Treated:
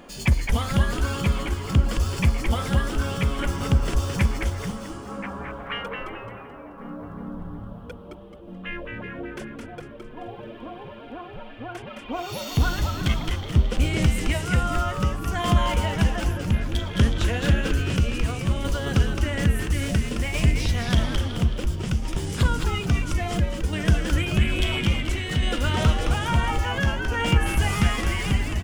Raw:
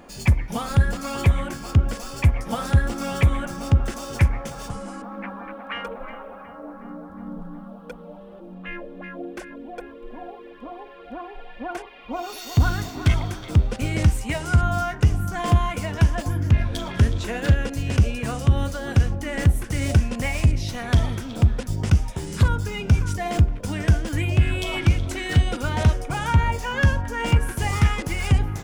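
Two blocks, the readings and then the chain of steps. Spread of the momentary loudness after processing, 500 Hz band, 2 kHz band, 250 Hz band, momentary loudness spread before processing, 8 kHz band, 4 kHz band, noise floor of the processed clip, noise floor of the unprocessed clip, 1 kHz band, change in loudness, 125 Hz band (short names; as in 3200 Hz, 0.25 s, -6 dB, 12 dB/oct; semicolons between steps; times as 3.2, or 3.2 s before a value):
16 LU, 0.0 dB, +0.5 dB, +0.5 dB, 17 LU, +0.5 dB, +3.5 dB, -41 dBFS, -42 dBFS, -0.5 dB, -2.0 dB, -3.0 dB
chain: thirty-one-band EQ 100 Hz -10 dB, 800 Hz -3 dB, 3150 Hz +6 dB; tremolo saw down 0.59 Hz, depth 50%; frequency-shifting echo 0.216 s, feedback 41%, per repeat -130 Hz, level -4 dB; gain +1 dB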